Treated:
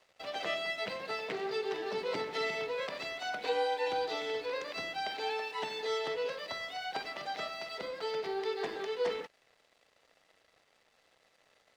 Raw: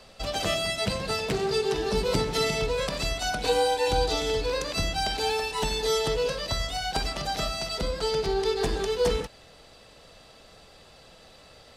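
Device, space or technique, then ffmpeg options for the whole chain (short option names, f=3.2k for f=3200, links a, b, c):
pocket radio on a weak battery: -af "highpass=360,lowpass=3.5k,aeval=exprs='sgn(val(0))*max(abs(val(0))-0.00188,0)':c=same,equalizer=f=2k:t=o:w=0.3:g=6,volume=-6.5dB"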